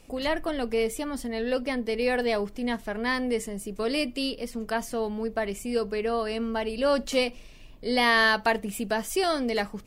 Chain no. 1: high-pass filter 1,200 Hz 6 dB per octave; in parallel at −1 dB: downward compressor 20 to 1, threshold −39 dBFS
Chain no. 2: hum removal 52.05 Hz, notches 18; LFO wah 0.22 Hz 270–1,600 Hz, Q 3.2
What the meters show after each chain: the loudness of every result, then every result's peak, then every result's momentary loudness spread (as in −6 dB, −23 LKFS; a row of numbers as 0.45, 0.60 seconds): −30.0, −37.0 LKFS; −9.5, −17.0 dBFS; 10, 12 LU